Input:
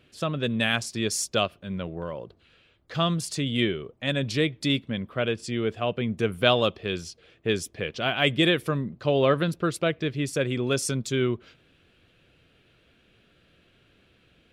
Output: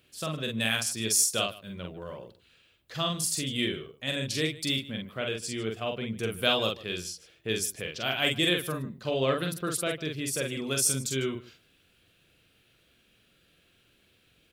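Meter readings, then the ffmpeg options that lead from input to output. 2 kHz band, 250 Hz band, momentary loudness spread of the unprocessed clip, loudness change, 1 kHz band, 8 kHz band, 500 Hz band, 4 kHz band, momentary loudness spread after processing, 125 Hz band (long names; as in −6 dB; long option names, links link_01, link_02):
−3.0 dB, −6.0 dB, 11 LU, −2.5 dB, −5.5 dB, +6.0 dB, −6.0 dB, −0.5 dB, 12 LU, −6.5 dB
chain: -af "aemphasis=mode=production:type=75fm,aecho=1:1:45|150:0.668|0.119,volume=-7dB"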